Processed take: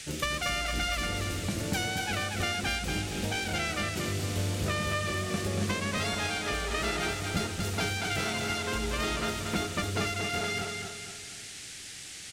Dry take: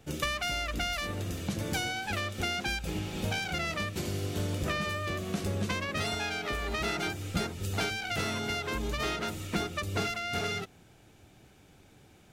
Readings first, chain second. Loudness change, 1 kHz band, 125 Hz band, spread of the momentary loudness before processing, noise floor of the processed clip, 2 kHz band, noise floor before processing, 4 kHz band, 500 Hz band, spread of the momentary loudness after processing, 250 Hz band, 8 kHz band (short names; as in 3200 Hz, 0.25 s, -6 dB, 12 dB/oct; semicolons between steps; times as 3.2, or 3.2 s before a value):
+1.5 dB, +1.5 dB, +1.5 dB, 3 LU, -44 dBFS, +2.0 dB, -58 dBFS, +2.5 dB, +1.5 dB, 7 LU, +1.5 dB, +5.5 dB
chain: feedback echo 0.235 s, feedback 44%, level -4.5 dB; band noise 1600–9300 Hz -44 dBFS